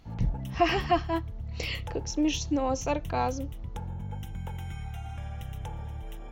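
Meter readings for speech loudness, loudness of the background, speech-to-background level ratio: -30.0 LUFS, -39.0 LUFS, 9.0 dB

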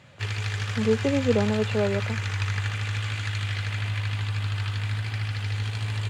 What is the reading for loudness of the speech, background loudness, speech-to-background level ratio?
-26.0 LUFS, -29.0 LUFS, 3.0 dB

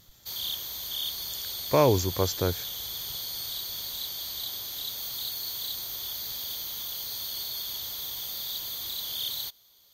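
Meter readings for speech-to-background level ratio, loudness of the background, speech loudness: 6.0 dB, -32.0 LUFS, -26.0 LUFS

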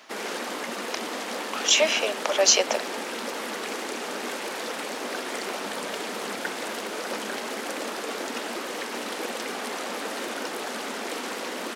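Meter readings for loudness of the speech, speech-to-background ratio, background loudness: -21.5 LUFS, 10.0 dB, -31.5 LUFS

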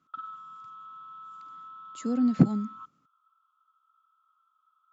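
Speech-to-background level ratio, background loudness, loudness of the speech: 18.5 dB, -44.5 LUFS, -26.0 LUFS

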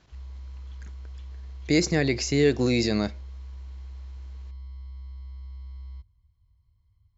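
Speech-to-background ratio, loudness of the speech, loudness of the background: 18.5 dB, -24.0 LUFS, -42.5 LUFS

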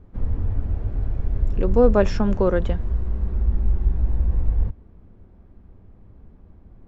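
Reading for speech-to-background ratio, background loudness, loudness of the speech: 5.0 dB, -26.0 LUFS, -21.0 LUFS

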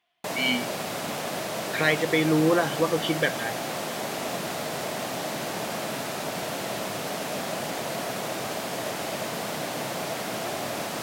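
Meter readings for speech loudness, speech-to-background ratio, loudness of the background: -24.5 LUFS, 6.5 dB, -31.0 LUFS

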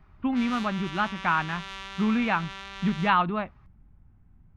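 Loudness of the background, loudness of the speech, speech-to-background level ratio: -39.0 LUFS, -27.0 LUFS, 12.0 dB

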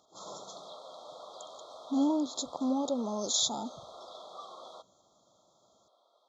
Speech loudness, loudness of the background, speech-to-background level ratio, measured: -31.0 LUFS, -48.5 LUFS, 17.5 dB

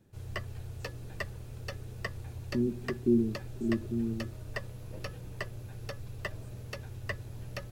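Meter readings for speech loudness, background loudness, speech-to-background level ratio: -32.0 LUFS, -42.0 LUFS, 10.0 dB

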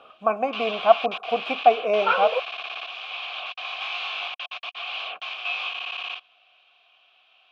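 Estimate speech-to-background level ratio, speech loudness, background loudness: 8.5 dB, -22.5 LUFS, -31.0 LUFS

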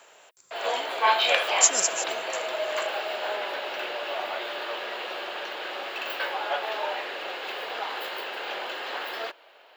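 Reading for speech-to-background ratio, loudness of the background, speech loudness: 6.0 dB, -29.0 LUFS, -23.0 LUFS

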